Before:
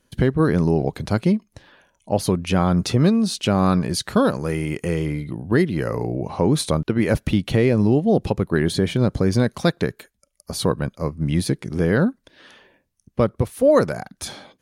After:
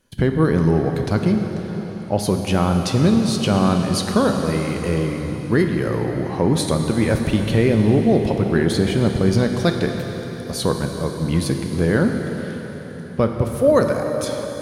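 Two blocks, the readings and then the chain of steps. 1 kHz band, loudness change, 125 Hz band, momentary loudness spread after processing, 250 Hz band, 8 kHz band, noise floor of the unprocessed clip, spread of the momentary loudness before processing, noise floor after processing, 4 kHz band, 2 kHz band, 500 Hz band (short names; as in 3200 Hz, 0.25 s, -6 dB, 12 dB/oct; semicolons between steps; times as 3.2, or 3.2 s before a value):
+1.5 dB, +1.0 dB, +1.5 dB, 10 LU, +1.5 dB, +1.5 dB, -70 dBFS, 8 LU, -31 dBFS, +1.5 dB, +1.5 dB, +1.5 dB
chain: plate-style reverb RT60 4.7 s, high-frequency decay 1×, DRR 3.5 dB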